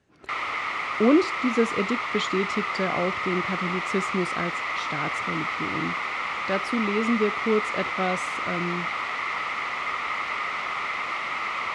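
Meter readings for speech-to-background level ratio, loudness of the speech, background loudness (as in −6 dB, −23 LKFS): 0.0 dB, −28.0 LKFS, −28.0 LKFS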